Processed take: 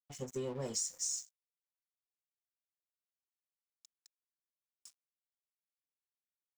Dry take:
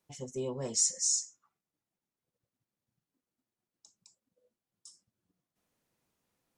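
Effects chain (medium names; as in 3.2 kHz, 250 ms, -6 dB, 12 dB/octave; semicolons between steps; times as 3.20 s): compression 5:1, threshold -36 dBFS, peak gain reduction 12 dB; crossover distortion -53.5 dBFS; trim +2 dB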